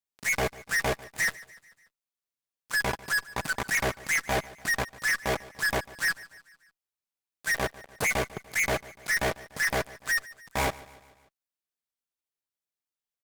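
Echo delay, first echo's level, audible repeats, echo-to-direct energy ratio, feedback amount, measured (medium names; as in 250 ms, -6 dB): 146 ms, -20.0 dB, 3, -18.5 dB, 53%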